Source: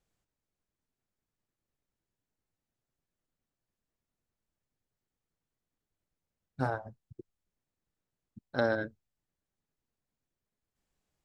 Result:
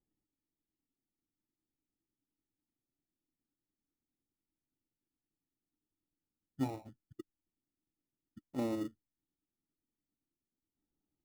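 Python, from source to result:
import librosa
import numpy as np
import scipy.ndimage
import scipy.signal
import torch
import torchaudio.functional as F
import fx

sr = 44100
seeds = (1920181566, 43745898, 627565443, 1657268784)

p1 = fx.formant_cascade(x, sr, vowel='u')
p2 = fx.sample_hold(p1, sr, seeds[0], rate_hz=1600.0, jitter_pct=0)
p3 = p1 + F.gain(torch.from_numpy(p2), -6.5).numpy()
y = F.gain(torch.from_numpy(p3), 3.5).numpy()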